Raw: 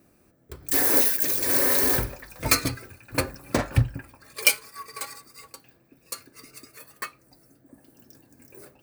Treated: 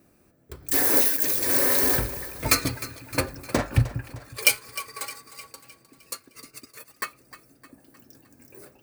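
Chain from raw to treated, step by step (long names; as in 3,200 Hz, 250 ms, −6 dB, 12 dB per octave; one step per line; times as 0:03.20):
0:06.14–0:07.05: transient designer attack +3 dB, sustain −9 dB
echo with a time of its own for lows and highs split 390 Hz, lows 182 ms, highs 307 ms, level −15.5 dB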